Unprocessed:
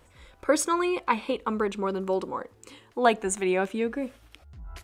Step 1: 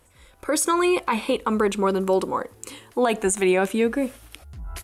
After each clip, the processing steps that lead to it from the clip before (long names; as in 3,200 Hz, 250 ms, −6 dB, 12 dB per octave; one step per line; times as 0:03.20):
parametric band 11,000 Hz +13 dB 0.85 octaves
brickwall limiter −18.5 dBFS, peak gain reduction 11.5 dB
automatic gain control gain up to 9 dB
level −2 dB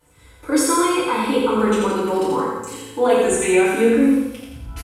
repeating echo 84 ms, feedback 52%, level −3 dB
feedback delay network reverb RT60 0.76 s, low-frequency decay 1.3×, high-frequency decay 0.8×, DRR −9.5 dB
level −8 dB